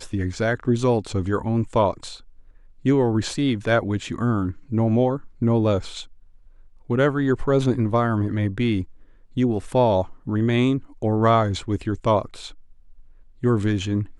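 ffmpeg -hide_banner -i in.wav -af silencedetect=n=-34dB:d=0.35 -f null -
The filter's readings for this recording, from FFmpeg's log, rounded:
silence_start: 2.16
silence_end: 2.85 | silence_duration: 0.70
silence_start: 6.04
silence_end: 6.90 | silence_duration: 0.86
silence_start: 8.84
silence_end: 9.37 | silence_duration: 0.53
silence_start: 12.51
silence_end: 13.43 | silence_duration: 0.92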